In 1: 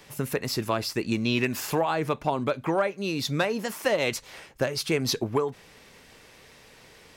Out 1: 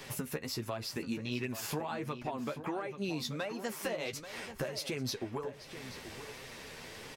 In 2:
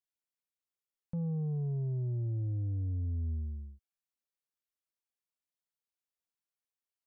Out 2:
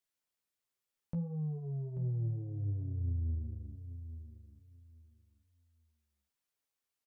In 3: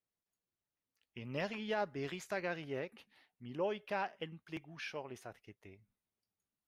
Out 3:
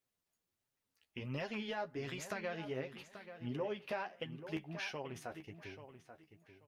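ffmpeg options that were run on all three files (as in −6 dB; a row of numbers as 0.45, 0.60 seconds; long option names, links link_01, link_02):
-filter_complex "[0:a]acompressor=threshold=-42dB:ratio=4,flanger=delay=7.4:depth=5.7:regen=22:speed=1.4:shape=sinusoidal,asplit=2[link_01][link_02];[link_02]adelay=835,lowpass=frequency=3800:poles=1,volume=-11dB,asplit=2[link_03][link_04];[link_04]adelay=835,lowpass=frequency=3800:poles=1,volume=0.21,asplit=2[link_05][link_06];[link_06]adelay=835,lowpass=frequency=3800:poles=1,volume=0.21[link_07];[link_03][link_05][link_07]amix=inputs=3:normalize=0[link_08];[link_01][link_08]amix=inputs=2:normalize=0,volume=8dB"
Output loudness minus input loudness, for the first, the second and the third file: −11.0, −3.0, −2.0 LU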